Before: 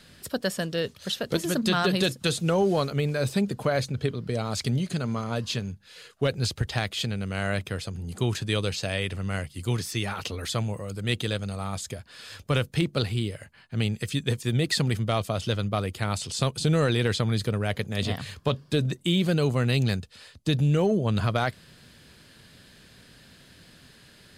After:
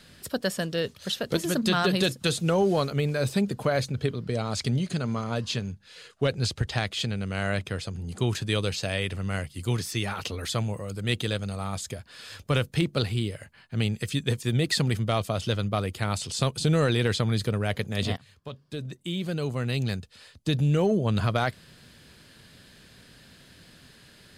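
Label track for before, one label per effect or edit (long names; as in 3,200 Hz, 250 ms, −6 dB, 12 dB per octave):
4.240000	8.270000	low-pass filter 10,000 Hz
18.170000	20.920000	fade in, from −20 dB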